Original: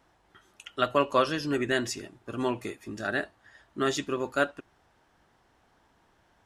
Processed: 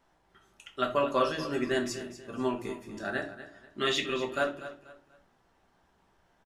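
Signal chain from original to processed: 3.78–4.23 s: high-order bell 2.8 kHz +11 dB 1.3 oct; feedback delay 242 ms, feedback 31%, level -13.5 dB; simulated room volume 190 m³, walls furnished, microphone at 1.2 m; trim -5.5 dB

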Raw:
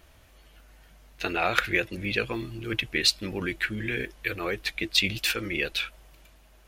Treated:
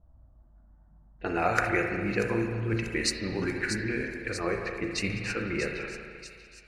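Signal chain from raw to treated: touch-sensitive phaser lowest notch 350 Hz, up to 3.4 kHz, full sweep at -30.5 dBFS; level-controlled noise filter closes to 390 Hz, open at -26 dBFS; on a send: feedback echo behind a high-pass 638 ms, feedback 59%, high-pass 4.4 kHz, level -6 dB; on the sum: spring tank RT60 1.9 s, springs 35/53 ms, chirp 50 ms, DRR 2 dB

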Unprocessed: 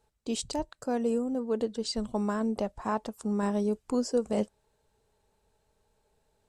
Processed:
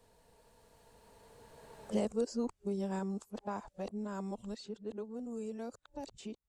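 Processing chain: reverse the whole clip; Doppler pass-by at 2.00 s, 21 m/s, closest 6.7 m; three bands compressed up and down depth 70%; trim +1.5 dB

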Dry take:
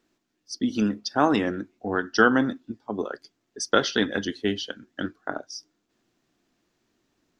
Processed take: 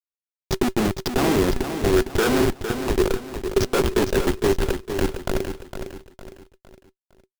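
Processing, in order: high-pass 160 Hz 12 dB/octave; tone controls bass -10 dB, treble -14 dB; upward compressor, threshold -24 dBFS; Schmitt trigger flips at -26.5 dBFS; small resonant body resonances 380 Hz, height 15 dB, ringing for 85 ms; short-mantissa float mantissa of 2-bit; feedback delay 458 ms, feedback 39%, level -8.5 dB; trim +8.5 dB

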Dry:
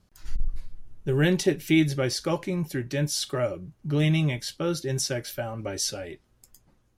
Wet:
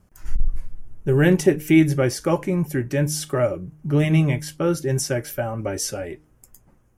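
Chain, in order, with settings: peaking EQ 4 kHz -15 dB 0.83 oct; de-hum 152.7 Hz, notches 3; trim +6.5 dB

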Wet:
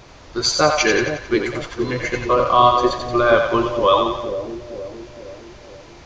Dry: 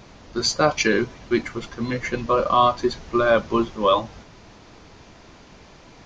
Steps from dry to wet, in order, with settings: peaking EQ 210 Hz -10.5 dB 0.45 oct; on a send: two-band feedback delay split 550 Hz, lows 467 ms, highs 89 ms, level -5 dB; on the sum: trim +3 dB

